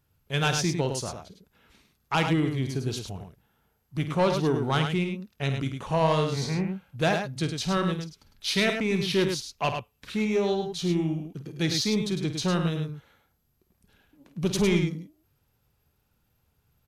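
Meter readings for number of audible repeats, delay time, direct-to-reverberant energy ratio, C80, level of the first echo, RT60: 2, 51 ms, no reverb audible, no reverb audible, −11.0 dB, no reverb audible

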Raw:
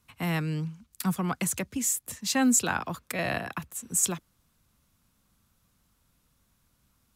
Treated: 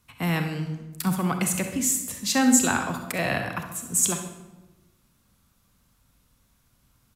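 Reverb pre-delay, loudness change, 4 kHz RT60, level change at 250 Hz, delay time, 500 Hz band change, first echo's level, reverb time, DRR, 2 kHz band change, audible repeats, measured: 36 ms, +4.0 dB, 0.75 s, +4.5 dB, 66 ms, +4.0 dB, −11.5 dB, 1.1 s, 5.5 dB, +4.0 dB, 1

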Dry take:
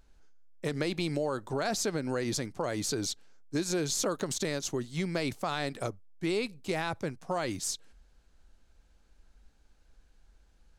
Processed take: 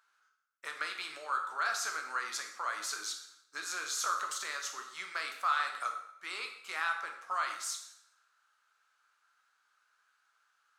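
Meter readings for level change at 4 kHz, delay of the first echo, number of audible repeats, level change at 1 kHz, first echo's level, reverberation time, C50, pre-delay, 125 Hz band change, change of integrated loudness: −3.0 dB, no echo audible, no echo audible, +3.5 dB, no echo audible, 0.70 s, 6.5 dB, 5 ms, below −40 dB, −3.0 dB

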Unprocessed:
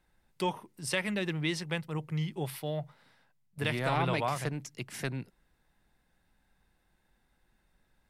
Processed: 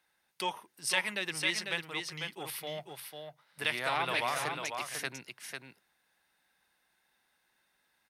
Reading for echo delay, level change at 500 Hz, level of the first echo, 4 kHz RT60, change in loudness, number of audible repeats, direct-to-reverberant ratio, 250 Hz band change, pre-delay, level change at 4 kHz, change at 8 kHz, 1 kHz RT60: 497 ms, −4.0 dB, −5.5 dB, no reverb audible, −0.5 dB, 1, no reverb audible, −10.0 dB, no reverb audible, +4.5 dB, +4.5 dB, no reverb audible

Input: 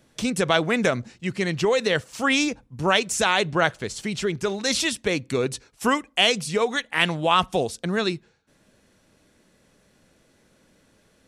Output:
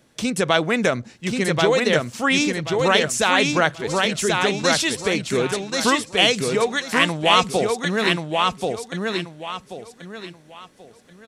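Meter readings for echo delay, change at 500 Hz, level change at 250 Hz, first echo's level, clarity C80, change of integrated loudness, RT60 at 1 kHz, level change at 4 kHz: 1,083 ms, +4.0 dB, +3.5 dB, −3.0 dB, no reverb audible, +3.0 dB, no reverb audible, +4.0 dB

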